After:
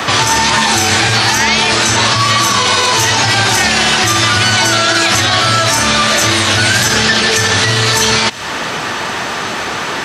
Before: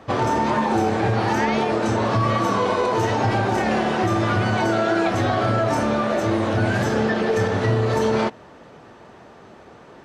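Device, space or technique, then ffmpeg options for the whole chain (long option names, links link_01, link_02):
mastering chain: -filter_complex "[0:a]highpass=55,equalizer=frequency=540:width_type=o:width=0.92:gain=-4,acrossover=split=110|1500|3600[link_01][link_02][link_03][link_04];[link_01]acompressor=threshold=-36dB:ratio=4[link_05];[link_02]acompressor=threshold=-36dB:ratio=4[link_06];[link_03]acompressor=threshold=-45dB:ratio=4[link_07];[link_04]acompressor=threshold=-44dB:ratio=4[link_08];[link_05][link_06][link_07][link_08]amix=inputs=4:normalize=0,acompressor=threshold=-42dB:ratio=1.5,asoftclip=type=tanh:threshold=-26.5dB,tiltshelf=frequency=1100:gain=-9,alimiter=level_in=30.5dB:limit=-1dB:release=50:level=0:latency=1,volume=-1dB"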